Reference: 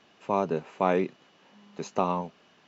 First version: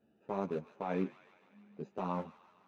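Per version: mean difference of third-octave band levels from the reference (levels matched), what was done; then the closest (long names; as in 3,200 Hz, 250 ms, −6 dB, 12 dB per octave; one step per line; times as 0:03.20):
4.0 dB: adaptive Wiener filter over 41 samples
brickwall limiter −18.5 dBFS, peak gain reduction 9 dB
on a send: delay with a high-pass on its return 151 ms, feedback 65%, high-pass 1,500 Hz, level −12 dB
on the sum: string-ensemble chorus
level −2.5 dB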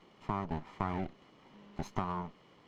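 6.5 dB: lower of the sound and its delayed copy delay 0.95 ms
low-pass filter 2,500 Hz 6 dB per octave
downward compressor 5 to 1, threshold −31 dBFS, peak gain reduction 12 dB
noise in a band 120–580 Hz −65 dBFS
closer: first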